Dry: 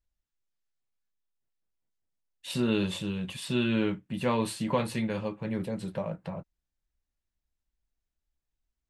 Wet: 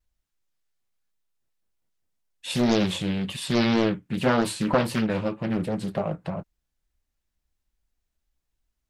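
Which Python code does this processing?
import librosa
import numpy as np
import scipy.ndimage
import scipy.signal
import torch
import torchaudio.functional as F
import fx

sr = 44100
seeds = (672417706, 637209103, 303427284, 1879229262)

y = fx.vibrato(x, sr, rate_hz=1.9, depth_cents=65.0)
y = fx.doppler_dist(y, sr, depth_ms=0.67)
y = F.gain(torch.from_numpy(y), 6.0).numpy()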